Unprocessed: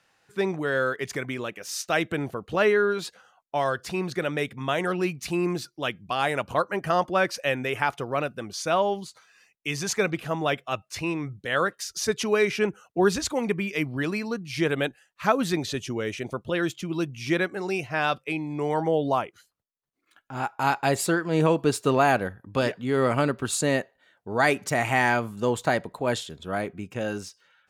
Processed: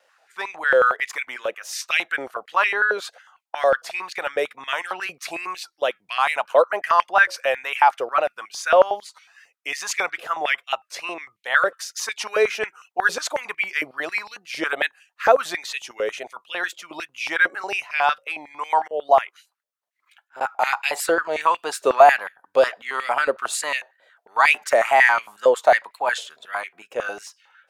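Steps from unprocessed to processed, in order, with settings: wow and flutter 71 cents; 18.79–20.41 s: slow attack 249 ms; step-sequenced high-pass 11 Hz 540–2400 Hz; trim +1 dB

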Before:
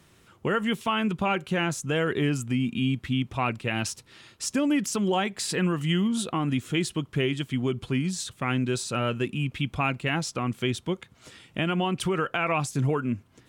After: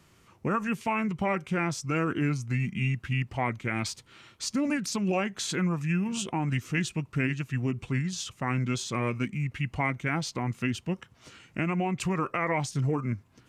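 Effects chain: formant shift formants -3 st; trim -2 dB

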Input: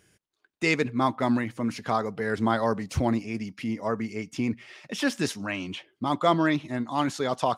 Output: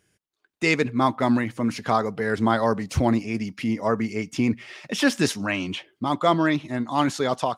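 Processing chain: level rider gain up to 12 dB; trim -5 dB

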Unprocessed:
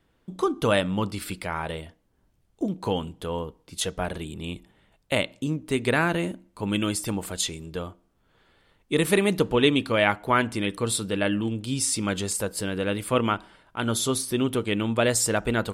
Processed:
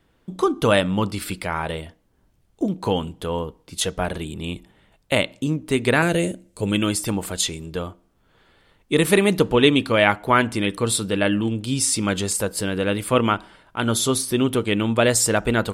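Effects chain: 6.02–6.72 s: graphic EQ 125/250/500/1000/8000 Hz +4/-4/+7/-11/+10 dB; trim +4.5 dB

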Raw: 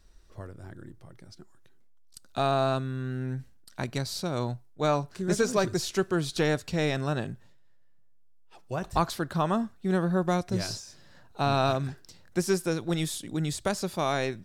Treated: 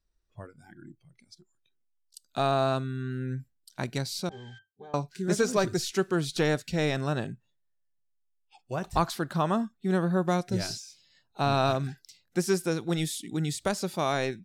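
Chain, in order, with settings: spectral noise reduction 20 dB; 4.31–4.59 s: painted sound noise 1.2–8.2 kHz -32 dBFS; 4.29–4.94 s: pitch-class resonator G, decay 0.17 s

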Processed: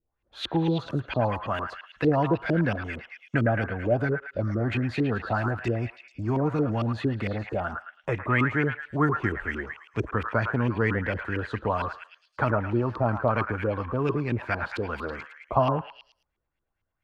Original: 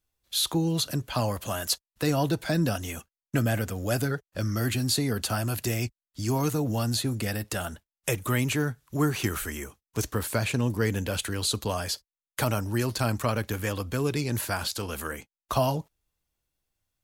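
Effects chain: LFO low-pass saw up 4.4 Hz 350–2700 Hz; repeats whose band climbs or falls 109 ms, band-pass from 1.3 kHz, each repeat 0.7 oct, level -2 dB

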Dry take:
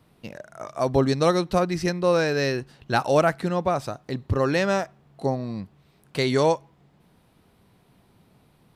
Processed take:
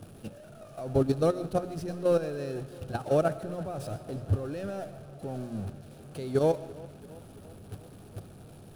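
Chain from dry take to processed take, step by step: jump at every zero crossing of -24 dBFS; graphic EQ with 31 bands 100 Hz +9 dB, 1 kHz -11 dB, 2 kHz -11 dB, 10 kHz +11 dB; level held to a coarse grid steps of 9 dB; treble shelf 2 kHz -12 dB; hum notches 60/120/180/240 Hz; tape echo 337 ms, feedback 76%, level -14.5 dB, low-pass 4.9 kHz; reverberation RT60 0.50 s, pre-delay 80 ms, DRR 12.5 dB; upward expansion 1.5:1, over -36 dBFS; trim -2.5 dB

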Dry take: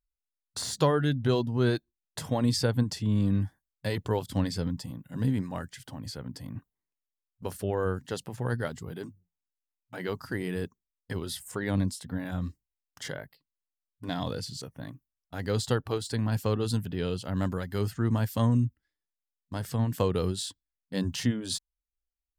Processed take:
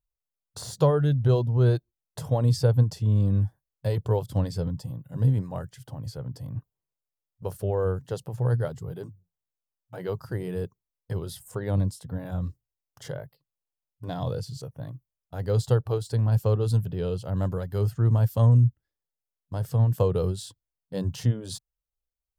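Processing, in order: ten-band graphic EQ 125 Hz +10 dB, 250 Hz -9 dB, 500 Hz +6 dB, 2 kHz -9 dB, 4 kHz -4 dB, 8 kHz -4 dB

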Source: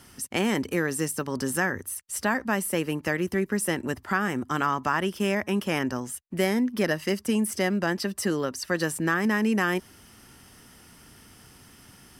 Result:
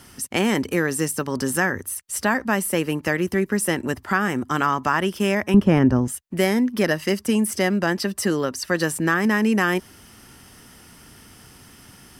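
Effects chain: 5.54–6.08 s: tilt EQ -4 dB/octave; trim +4.5 dB

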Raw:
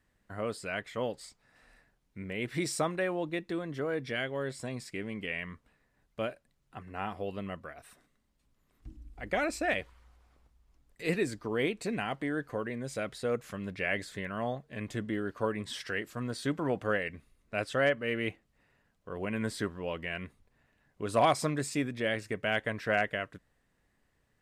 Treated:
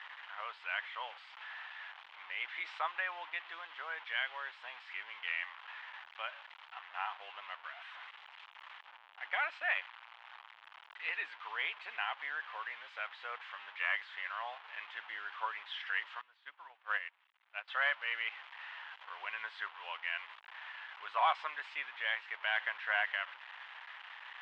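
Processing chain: one-bit delta coder 64 kbps, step -39 dBFS; Chebyshev band-pass 870–3200 Hz, order 3; 16.21–17.68 s: upward expansion 2.5:1, over -45 dBFS; trim +1 dB

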